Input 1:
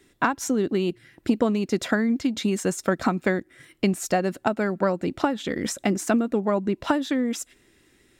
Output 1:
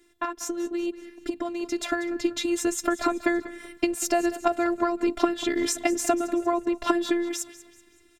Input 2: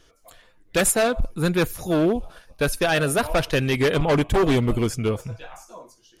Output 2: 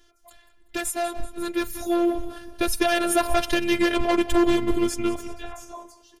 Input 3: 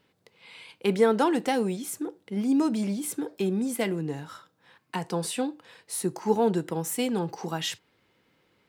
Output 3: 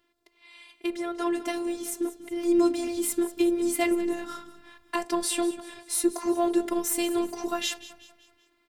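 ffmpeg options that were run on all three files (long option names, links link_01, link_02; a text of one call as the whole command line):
ffmpeg -i in.wav -filter_complex "[0:a]acompressor=threshold=-22dB:ratio=6,asplit=2[link_01][link_02];[link_02]asplit=4[link_03][link_04][link_05][link_06];[link_03]adelay=190,afreqshift=-31,volume=-16dB[link_07];[link_04]adelay=380,afreqshift=-62,volume=-22.7dB[link_08];[link_05]adelay=570,afreqshift=-93,volume=-29.5dB[link_09];[link_06]adelay=760,afreqshift=-124,volume=-36.2dB[link_10];[link_07][link_08][link_09][link_10]amix=inputs=4:normalize=0[link_11];[link_01][link_11]amix=inputs=2:normalize=0,dynaudnorm=framelen=430:gausssize=9:maxgain=8dB,afftfilt=real='hypot(re,im)*cos(PI*b)':imag='0':win_size=512:overlap=0.75" out.wav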